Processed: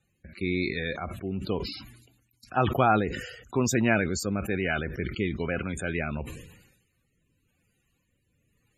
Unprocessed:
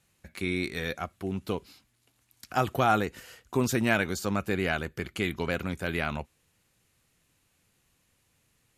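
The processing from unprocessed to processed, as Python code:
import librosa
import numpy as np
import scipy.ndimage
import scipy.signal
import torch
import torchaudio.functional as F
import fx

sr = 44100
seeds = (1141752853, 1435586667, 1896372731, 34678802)

y = fx.spec_topn(x, sr, count=64)
y = fx.rotary(y, sr, hz=1.0)
y = fx.sustainer(y, sr, db_per_s=61.0)
y = F.gain(torch.from_numpy(y), 2.5).numpy()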